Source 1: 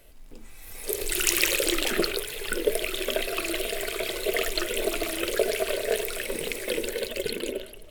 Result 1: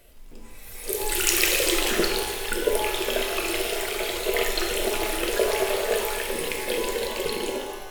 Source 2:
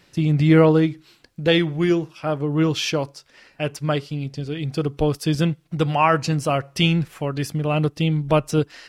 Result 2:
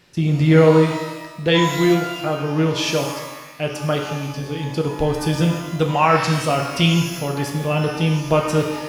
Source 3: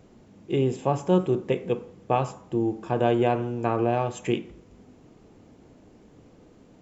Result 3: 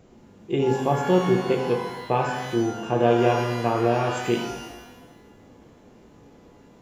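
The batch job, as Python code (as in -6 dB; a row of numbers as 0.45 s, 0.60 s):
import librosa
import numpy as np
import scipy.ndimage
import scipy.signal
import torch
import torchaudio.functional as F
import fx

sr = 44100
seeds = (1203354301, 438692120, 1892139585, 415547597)

y = fx.rev_shimmer(x, sr, seeds[0], rt60_s=1.1, semitones=12, shimmer_db=-8, drr_db=2.0)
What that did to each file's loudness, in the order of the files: +2.5 LU, +2.0 LU, +2.5 LU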